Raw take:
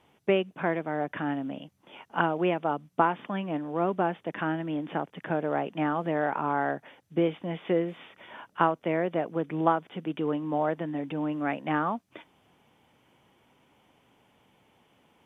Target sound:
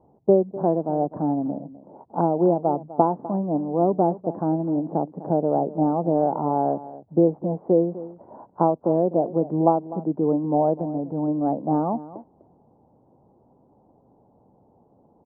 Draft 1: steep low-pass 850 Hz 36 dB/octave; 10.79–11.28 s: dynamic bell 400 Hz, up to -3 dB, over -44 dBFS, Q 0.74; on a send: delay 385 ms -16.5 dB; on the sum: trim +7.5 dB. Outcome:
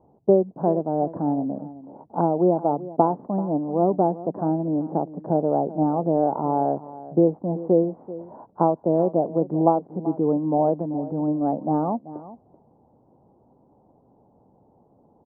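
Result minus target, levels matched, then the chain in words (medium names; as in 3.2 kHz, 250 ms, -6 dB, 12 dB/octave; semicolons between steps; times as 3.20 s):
echo 134 ms late
steep low-pass 850 Hz 36 dB/octave; 10.79–11.28 s: dynamic bell 400 Hz, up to -3 dB, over -44 dBFS, Q 0.74; on a send: delay 251 ms -16.5 dB; on the sum: trim +7.5 dB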